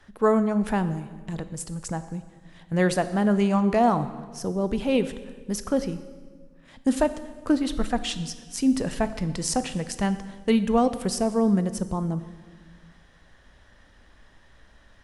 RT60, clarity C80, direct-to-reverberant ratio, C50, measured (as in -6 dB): 1.6 s, 14.0 dB, 11.5 dB, 13.0 dB